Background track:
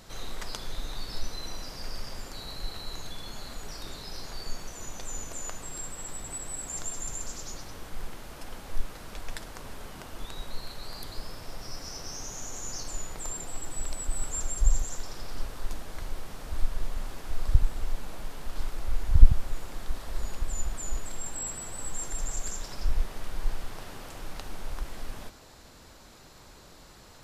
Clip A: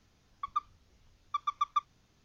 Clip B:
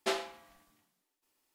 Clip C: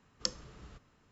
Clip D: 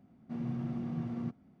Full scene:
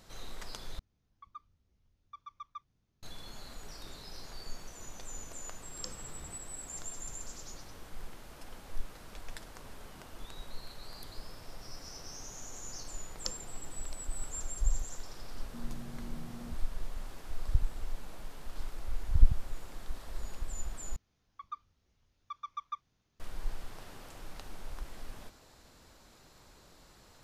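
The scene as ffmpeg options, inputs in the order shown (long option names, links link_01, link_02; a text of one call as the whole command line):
ffmpeg -i bed.wav -i cue0.wav -i cue1.wav -i cue2.wav -i cue3.wav -filter_complex "[1:a]asplit=2[link_01][link_02];[3:a]asplit=2[link_03][link_04];[0:a]volume=-7dB[link_05];[link_01]lowshelf=frequency=390:gain=9.5[link_06];[link_03]alimiter=limit=-21dB:level=0:latency=1:release=69[link_07];[4:a]acompressor=threshold=-39dB:ratio=6:attack=3.2:release=140:knee=1:detection=peak[link_08];[link_05]asplit=3[link_09][link_10][link_11];[link_09]atrim=end=0.794[link_12];[link_06]atrim=end=2.24,asetpts=PTS-STARTPTS,volume=-17dB[link_13];[link_10]atrim=start=3.026:end=20.964[link_14];[link_02]atrim=end=2.24,asetpts=PTS-STARTPTS,volume=-9.5dB[link_15];[link_11]atrim=start=23.196[link_16];[link_07]atrim=end=1.11,asetpts=PTS-STARTPTS,afade=type=in:duration=0.004:curve=hsin,afade=type=out:start_time=1.106:duration=0.004:curve=hsin,adelay=5590[link_17];[link_04]atrim=end=1.11,asetpts=PTS-STARTPTS,volume=-4.5dB,afade=type=in:duration=0.004:curve=hsin,afade=type=out:start_time=1.106:duration=0.004:curve=hsin,adelay=13010[link_18];[link_08]atrim=end=1.6,asetpts=PTS-STARTPTS,volume=-3.5dB,afade=type=in:duration=0.004:curve=hsin,afade=type=out:start_time=1.596:duration=0.004:curve=hsin,adelay=672084S[link_19];[link_12][link_13]acrossfade=duration=0.004:curve1=hsin:curve2=hsin[link_20];[link_20][link_14]acrossfade=duration=0.004:curve1=hsin:curve2=hsin[link_21];[link_21][link_15]acrossfade=duration=0.004:curve1=hsin:curve2=hsin[link_22];[link_22][link_16]acrossfade=duration=0.004:curve1=hsin:curve2=hsin[link_23];[link_23][link_17][link_18][link_19]amix=inputs=4:normalize=0" out.wav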